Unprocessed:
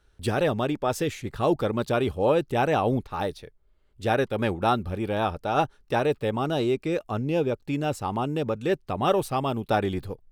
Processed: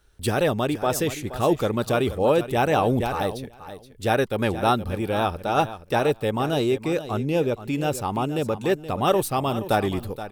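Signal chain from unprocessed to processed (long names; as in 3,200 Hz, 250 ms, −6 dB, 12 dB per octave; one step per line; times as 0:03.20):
high-shelf EQ 7,800 Hz +11 dB
repeating echo 474 ms, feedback 15%, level −13 dB
0:02.71–0:03.18: level that may fall only so fast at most 32 dB per second
level +2 dB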